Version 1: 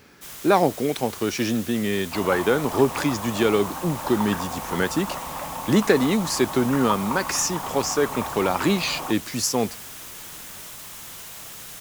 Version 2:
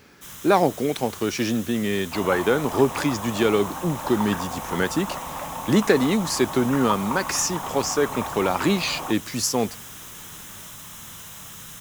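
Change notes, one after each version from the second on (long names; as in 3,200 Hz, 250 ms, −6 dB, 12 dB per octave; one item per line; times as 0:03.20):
first sound: send +9.0 dB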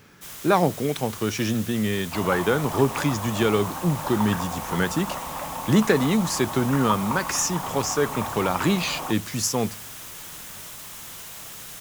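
speech: send on
first sound: send −7.5 dB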